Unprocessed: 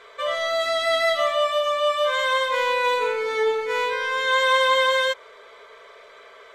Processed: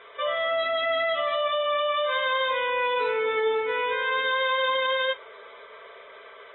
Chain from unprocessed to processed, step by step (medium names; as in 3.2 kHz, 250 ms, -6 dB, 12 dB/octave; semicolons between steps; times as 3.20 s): high-pass 69 Hz 6 dB/octave; peak limiter -17.5 dBFS, peak gain reduction 7.5 dB; AAC 16 kbps 22.05 kHz